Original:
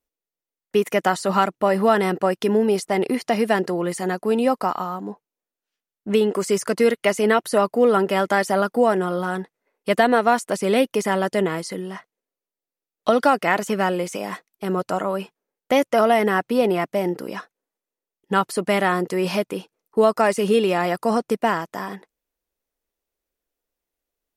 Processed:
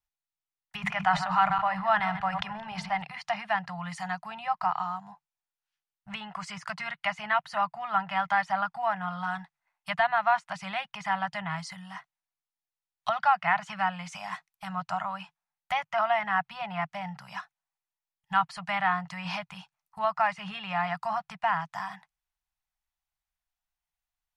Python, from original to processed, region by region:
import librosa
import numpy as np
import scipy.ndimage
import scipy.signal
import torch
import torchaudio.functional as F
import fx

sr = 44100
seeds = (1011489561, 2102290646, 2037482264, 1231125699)

y = fx.chain(x, sr, fx.reverse_delay_fb(ms=103, feedback_pct=41, wet_db=-13.0),
    fx.hum_notches(base_hz=50, count=4),
    fx.sustainer(db_per_s=38.0), at=(0.76, 3.02))
y = fx.env_lowpass_down(y, sr, base_hz=2800.0, full_db=-16.5)
y = scipy.signal.sosfilt(scipy.signal.ellip(3, 1.0, 40, [160.0, 770.0], 'bandstop', fs=sr, output='sos'), y)
y = fx.high_shelf(y, sr, hz=6400.0, db=-8.0)
y = y * librosa.db_to_amplitude(-2.5)